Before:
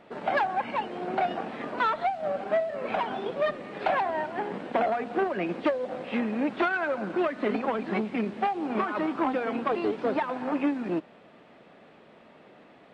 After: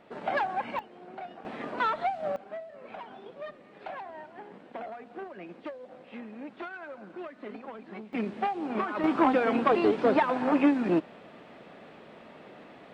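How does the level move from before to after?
−3 dB
from 0:00.79 −14.5 dB
from 0:01.45 −2 dB
from 0:02.36 −14 dB
from 0:08.13 −2.5 dB
from 0:09.04 +4 dB

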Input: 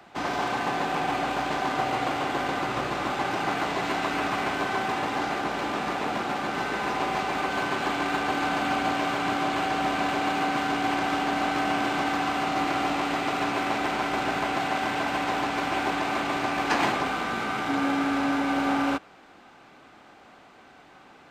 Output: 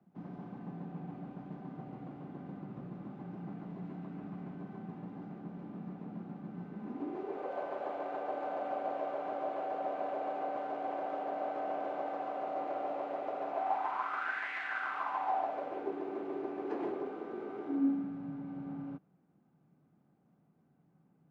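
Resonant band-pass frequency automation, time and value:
resonant band-pass, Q 4.9
0:06.73 180 Hz
0:07.54 570 Hz
0:13.45 570 Hz
0:14.54 2,000 Hz
0:15.92 390 Hz
0:17.65 390 Hz
0:18.16 160 Hz

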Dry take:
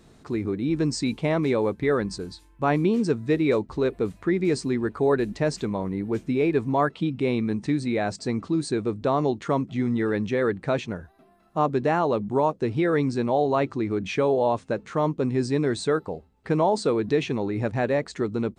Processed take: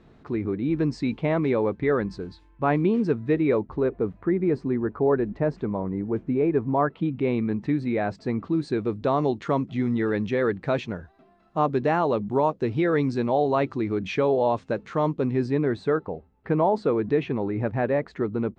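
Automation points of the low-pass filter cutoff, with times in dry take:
0:03.19 2,700 Hz
0:04.00 1,400 Hz
0:06.70 1,400 Hz
0:07.23 2,400 Hz
0:08.44 2,400 Hz
0:09.04 4,800 Hz
0:15.10 4,800 Hz
0:15.66 2,100 Hz

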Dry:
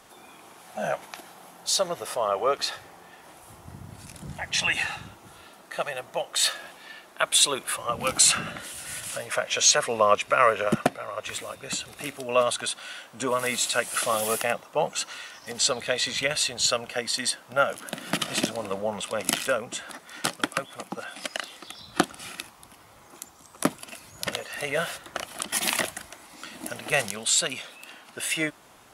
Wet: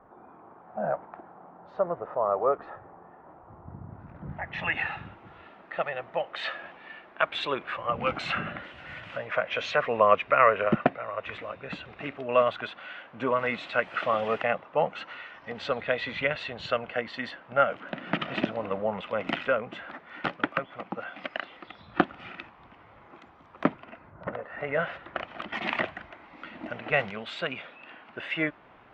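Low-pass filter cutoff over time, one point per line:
low-pass filter 24 dB per octave
0:03.85 1,300 Hz
0:04.95 2,600 Hz
0:23.65 2,600 Hz
0:24.27 1,400 Hz
0:25.00 2,600 Hz

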